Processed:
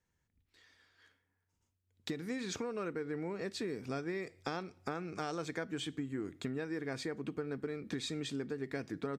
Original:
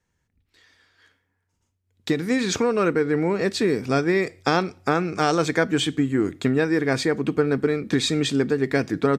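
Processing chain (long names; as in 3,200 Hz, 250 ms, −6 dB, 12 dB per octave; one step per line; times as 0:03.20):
downward compressor 2.5 to 1, threshold −32 dBFS, peak gain reduction 12 dB
level −8 dB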